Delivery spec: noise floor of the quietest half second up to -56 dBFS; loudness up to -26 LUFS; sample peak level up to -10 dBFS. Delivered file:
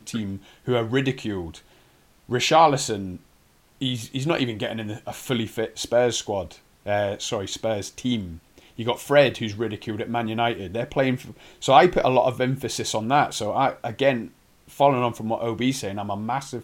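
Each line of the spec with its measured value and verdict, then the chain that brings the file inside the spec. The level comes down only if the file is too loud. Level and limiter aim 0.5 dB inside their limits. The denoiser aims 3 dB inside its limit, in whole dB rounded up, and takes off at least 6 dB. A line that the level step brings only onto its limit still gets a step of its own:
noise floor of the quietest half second -58 dBFS: pass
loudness -23.5 LUFS: fail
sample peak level -1.5 dBFS: fail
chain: trim -3 dB; peak limiter -10.5 dBFS

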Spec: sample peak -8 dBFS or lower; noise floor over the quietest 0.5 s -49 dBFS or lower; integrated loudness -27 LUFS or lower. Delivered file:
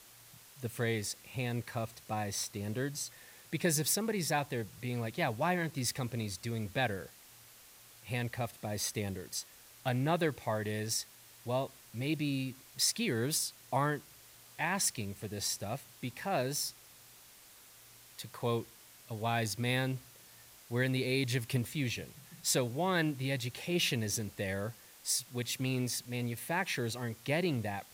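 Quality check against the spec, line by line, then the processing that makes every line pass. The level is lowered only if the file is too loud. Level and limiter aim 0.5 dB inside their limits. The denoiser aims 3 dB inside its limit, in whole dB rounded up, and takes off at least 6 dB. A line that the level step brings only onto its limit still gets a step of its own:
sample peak -18.0 dBFS: pass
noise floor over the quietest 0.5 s -57 dBFS: pass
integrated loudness -34.5 LUFS: pass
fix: none needed

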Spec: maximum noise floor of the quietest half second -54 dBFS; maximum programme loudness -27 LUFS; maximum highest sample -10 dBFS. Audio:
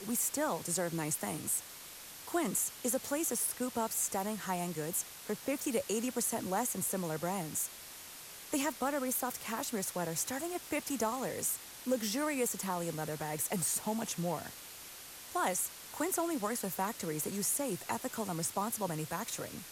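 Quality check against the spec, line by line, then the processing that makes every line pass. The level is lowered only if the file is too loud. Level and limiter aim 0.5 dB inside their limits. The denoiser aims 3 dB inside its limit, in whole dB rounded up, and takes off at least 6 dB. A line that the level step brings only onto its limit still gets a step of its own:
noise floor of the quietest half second -49 dBFS: fail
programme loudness -35.0 LUFS: pass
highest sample -19.5 dBFS: pass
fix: noise reduction 8 dB, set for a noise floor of -49 dBFS

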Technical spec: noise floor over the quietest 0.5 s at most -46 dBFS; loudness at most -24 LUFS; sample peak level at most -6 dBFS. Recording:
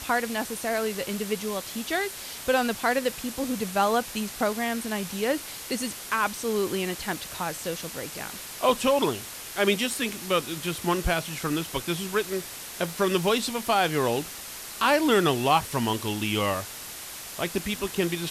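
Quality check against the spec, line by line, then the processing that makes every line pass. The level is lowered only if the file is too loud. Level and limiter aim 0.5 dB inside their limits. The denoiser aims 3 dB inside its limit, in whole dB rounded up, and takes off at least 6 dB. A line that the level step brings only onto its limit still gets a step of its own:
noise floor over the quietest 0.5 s -39 dBFS: fail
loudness -27.0 LUFS: pass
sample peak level -9.0 dBFS: pass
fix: noise reduction 10 dB, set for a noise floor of -39 dBFS

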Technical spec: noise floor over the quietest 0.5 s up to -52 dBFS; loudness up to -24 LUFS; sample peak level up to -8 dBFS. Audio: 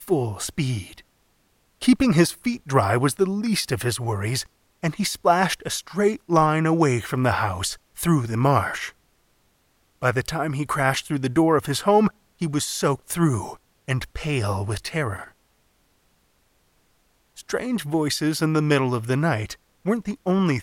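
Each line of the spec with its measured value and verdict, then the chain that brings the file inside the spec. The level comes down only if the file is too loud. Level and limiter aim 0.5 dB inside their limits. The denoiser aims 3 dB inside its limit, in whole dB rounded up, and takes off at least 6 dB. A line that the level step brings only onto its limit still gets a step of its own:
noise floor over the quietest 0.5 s -64 dBFS: pass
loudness -23.0 LUFS: fail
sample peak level -5.5 dBFS: fail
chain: trim -1.5 dB; peak limiter -8.5 dBFS

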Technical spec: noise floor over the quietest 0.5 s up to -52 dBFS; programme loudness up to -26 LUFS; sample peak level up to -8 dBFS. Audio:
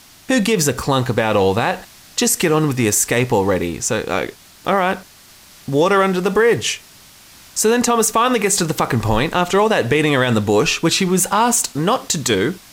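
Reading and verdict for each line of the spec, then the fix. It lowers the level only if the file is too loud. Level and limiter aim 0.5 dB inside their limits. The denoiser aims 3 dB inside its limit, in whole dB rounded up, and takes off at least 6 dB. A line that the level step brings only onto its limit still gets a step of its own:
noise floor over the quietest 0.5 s -45 dBFS: fail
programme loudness -17.0 LUFS: fail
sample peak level -5.5 dBFS: fail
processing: trim -9.5 dB

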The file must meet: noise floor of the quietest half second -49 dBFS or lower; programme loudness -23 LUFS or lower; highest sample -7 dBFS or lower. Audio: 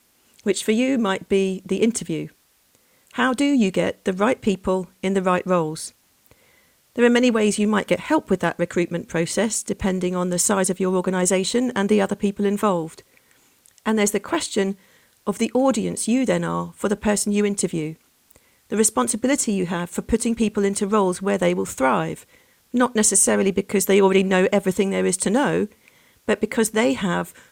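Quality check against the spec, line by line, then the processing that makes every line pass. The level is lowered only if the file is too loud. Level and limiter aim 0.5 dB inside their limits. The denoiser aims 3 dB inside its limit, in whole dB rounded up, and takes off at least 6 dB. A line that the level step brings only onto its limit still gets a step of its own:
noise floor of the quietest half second -61 dBFS: pass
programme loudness -21.0 LUFS: fail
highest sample -5.0 dBFS: fail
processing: trim -2.5 dB

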